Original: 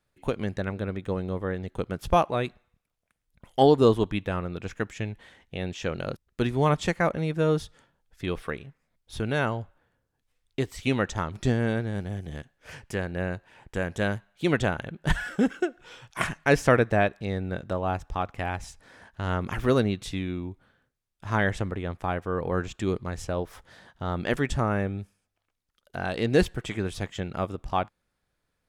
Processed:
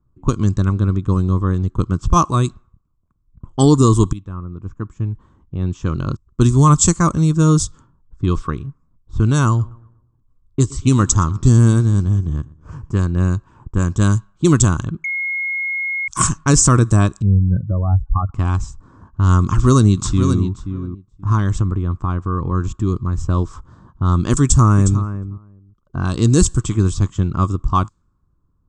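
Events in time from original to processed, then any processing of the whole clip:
0:04.13–0:06.27: fade in, from −17.5 dB
0:09.47–0:12.97: feedback echo with a swinging delay time 119 ms, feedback 40%, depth 55 cents, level −22 dB
0:15.04–0:16.08: beep over 2,160 Hz −14.5 dBFS
0:17.22–0:18.34: expanding power law on the bin magnitudes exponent 2.7
0:19.43–0:20.41: delay throw 530 ms, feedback 15%, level −9 dB
0:21.32–0:23.17: downward compressor 1.5 to 1, threshold −34 dBFS
0:24.41–0:25.01: delay throw 360 ms, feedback 10%, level −12.5 dB
whole clip: low-pass that shuts in the quiet parts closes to 840 Hz, open at −21 dBFS; drawn EQ curve 110 Hz 0 dB, 220 Hz −7 dB, 330 Hz −6 dB, 500 Hz −21 dB, 780 Hz −22 dB, 1,100 Hz −2 dB, 1,900 Hz −26 dB, 4,300 Hz −8 dB, 7,800 Hz +14 dB, 12,000 Hz −22 dB; boost into a limiter +19.5 dB; level −1 dB

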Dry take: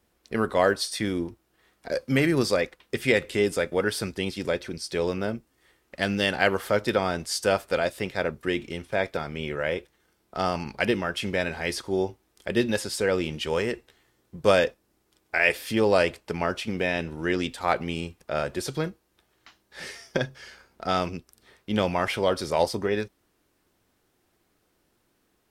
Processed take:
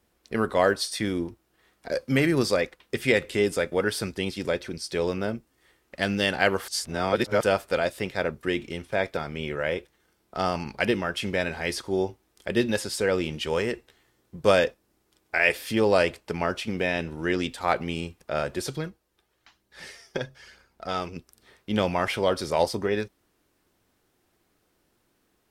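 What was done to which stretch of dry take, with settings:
0:06.68–0:07.43: reverse
0:18.76–0:21.16: flanger 1.1 Hz, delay 0.2 ms, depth 2.4 ms, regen +58%

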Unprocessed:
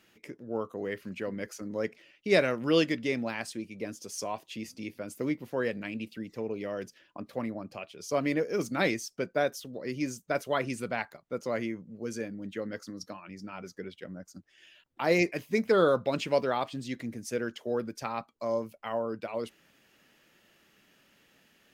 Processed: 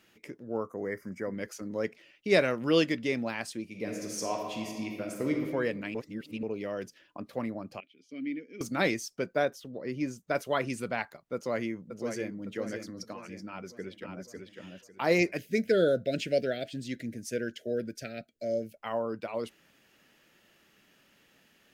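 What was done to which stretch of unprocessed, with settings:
0:00.57–0:01.34: gain on a spectral selection 2,300–4,700 Hz −21 dB
0:03.63–0:05.33: thrown reverb, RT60 1.7 s, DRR 0.5 dB
0:05.95–0:06.43: reverse
0:07.80–0:08.61: formant filter i
0:09.45–0:10.27: high-shelf EQ 3,300 Hz −9.5 dB
0:11.34–0:12.46: delay throw 560 ms, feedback 45%, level −7.5 dB
0:13.46–0:14.34: delay throw 550 ms, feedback 25%, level −4.5 dB
0:15.37–0:18.77: elliptic band-stop filter 660–1,500 Hz

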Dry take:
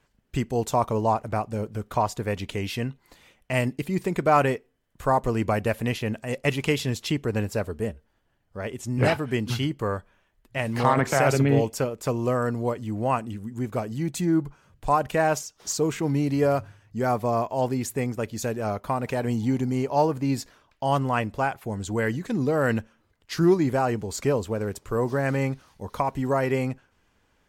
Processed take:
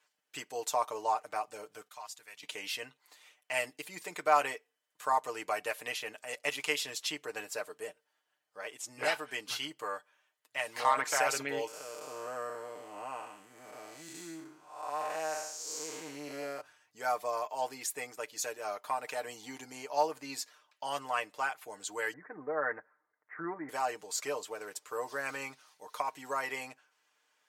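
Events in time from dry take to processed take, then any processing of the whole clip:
0:01.88–0:02.43: guitar amp tone stack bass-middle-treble 5-5-5
0:11.67–0:16.61: spectrum smeared in time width 282 ms
0:22.13–0:23.69: Butterworth low-pass 2,000 Hz 72 dB per octave
whole clip: high-pass filter 710 Hz 12 dB per octave; parametric band 7,400 Hz +5 dB 2.3 octaves; comb filter 6.6 ms; level −7 dB

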